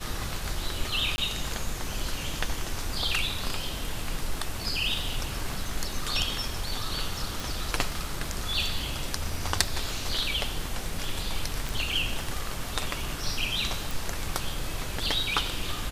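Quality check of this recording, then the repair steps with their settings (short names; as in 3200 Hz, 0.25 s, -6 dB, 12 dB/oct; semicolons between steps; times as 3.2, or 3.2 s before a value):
crackle 20/s -36 dBFS
1.16–1.18 gap 20 ms
7.4 pop
11.69 pop
13.91 pop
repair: de-click; interpolate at 1.16, 20 ms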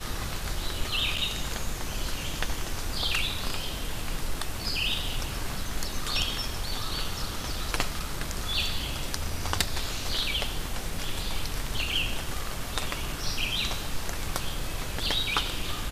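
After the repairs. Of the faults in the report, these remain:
none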